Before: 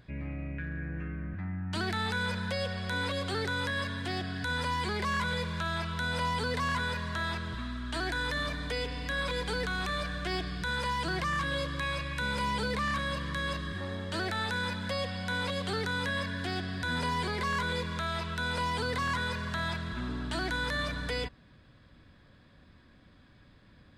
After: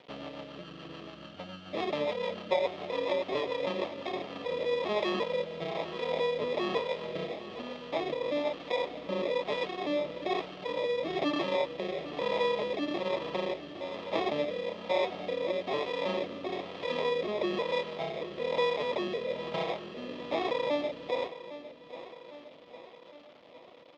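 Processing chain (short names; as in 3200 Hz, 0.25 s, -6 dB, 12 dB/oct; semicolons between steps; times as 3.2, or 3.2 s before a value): reverb removal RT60 1.2 s; sample-and-hold 30×; rotary speaker horn 7 Hz, later 1.1 Hz, at 3.6; bit-crush 10-bit; speaker cabinet 370–4100 Hz, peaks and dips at 600 Hz +8 dB, 1600 Hz -7 dB, 3200 Hz +5 dB; on a send: feedback echo 0.807 s, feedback 58%, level -14 dB; on the sum: gain +7 dB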